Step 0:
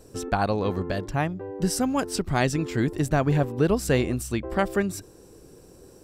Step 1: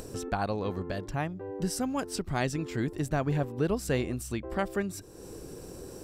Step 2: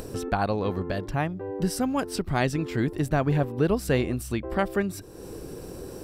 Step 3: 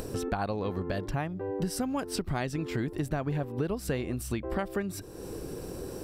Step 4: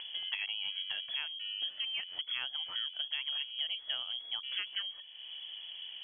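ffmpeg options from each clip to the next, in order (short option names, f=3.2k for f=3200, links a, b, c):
-af "acompressor=mode=upward:threshold=-24dB:ratio=2.5,volume=-6.5dB"
-af "equalizer=f=7k:t=o:w=0.71:g=-6.5,volume=5dB"
-af "acompressor=threshold=-27dB:ratio=6"
-af "lowpass=f=2.9k:t=q:w=0.5098,lowpass=f=2.9k:t=q:w=0.6013,lowpass=f=2.9k:t=q:w=0.9,lowpass=f=2.9k:t=q:w=2.563,afreqshift=-3400,volume=-6.5dB"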